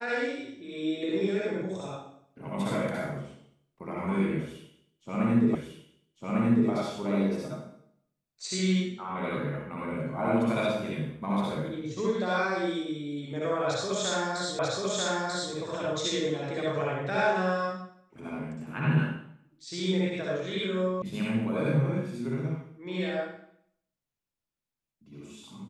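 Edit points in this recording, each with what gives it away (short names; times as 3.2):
5.55 repeat of the last 1.15 s
14.59 repeat of the last 0.94 s
21.02 sound cut off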